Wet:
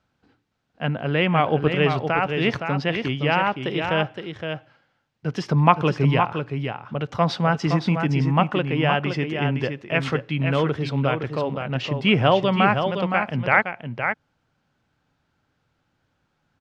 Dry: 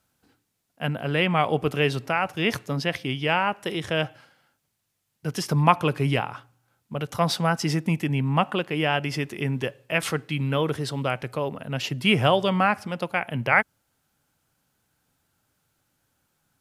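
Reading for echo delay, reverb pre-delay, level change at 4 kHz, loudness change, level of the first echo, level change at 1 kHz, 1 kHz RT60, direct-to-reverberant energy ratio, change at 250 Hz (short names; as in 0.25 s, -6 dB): 0.516 s, none, 0.0 dB, +2.5 dB, -6.5 dB, +3.0 dB, none, none, +3.5 dB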